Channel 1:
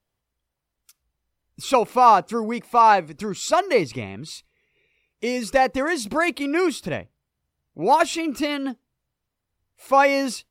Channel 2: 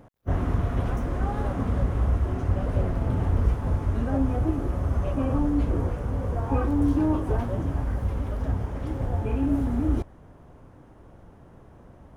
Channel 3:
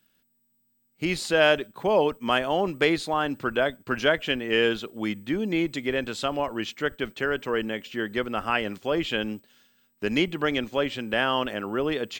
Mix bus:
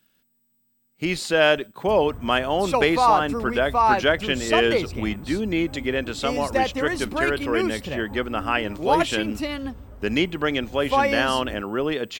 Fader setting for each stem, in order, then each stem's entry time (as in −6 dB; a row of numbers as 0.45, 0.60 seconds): −4.0, −13.5, +2.0 decibels; 1.00, 1.60, 0.00 seconds